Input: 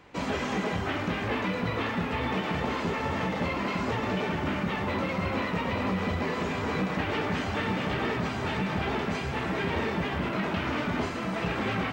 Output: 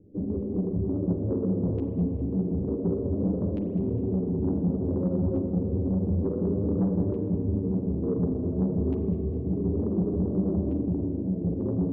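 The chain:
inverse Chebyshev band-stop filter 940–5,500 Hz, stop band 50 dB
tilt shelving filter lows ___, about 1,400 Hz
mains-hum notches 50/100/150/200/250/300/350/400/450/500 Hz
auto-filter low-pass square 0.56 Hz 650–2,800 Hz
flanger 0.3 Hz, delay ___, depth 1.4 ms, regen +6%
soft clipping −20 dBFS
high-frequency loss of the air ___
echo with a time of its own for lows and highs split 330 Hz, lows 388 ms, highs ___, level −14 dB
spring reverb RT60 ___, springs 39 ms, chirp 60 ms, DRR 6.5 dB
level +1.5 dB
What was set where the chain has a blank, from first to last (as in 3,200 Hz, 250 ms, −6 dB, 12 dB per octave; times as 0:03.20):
+8 dB, 9.9 ms, 82 metres, 205 ms, 2.5 s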